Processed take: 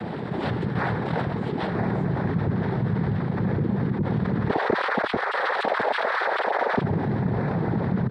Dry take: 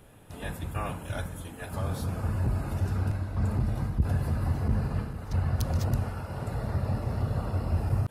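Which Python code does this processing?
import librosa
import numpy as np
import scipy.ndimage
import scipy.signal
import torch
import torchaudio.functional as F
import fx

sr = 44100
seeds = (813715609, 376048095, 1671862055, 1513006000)

y = fx.sine_speech(x, sr, at=(4.49, 6.81))
y = scipy.signal.sosfilt(scipy.signal.bessel(8, 1600.0, 'lowpass', norm='mag', fs=sr, output='sos'), y)
y = fx.notch(y, sr, hz=740.0, q=12.0)
y = fx.noise_vocoder(y, sr, seeds[0], bands=6)
y = fx.env_flatten(y, sr, amount_pct=70)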